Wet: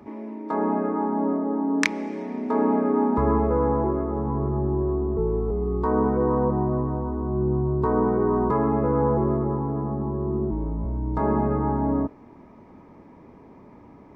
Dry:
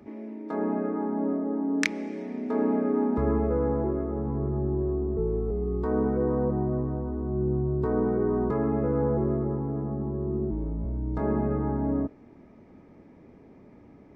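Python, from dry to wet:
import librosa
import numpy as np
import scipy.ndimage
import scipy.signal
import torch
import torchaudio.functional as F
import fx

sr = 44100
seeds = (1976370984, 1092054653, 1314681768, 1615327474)

y = fx.peak_eq(x, sr, hz=1000.0, db=11.5, octaves=0.48)
y = y * librosa.db_to_amplitude(3.0)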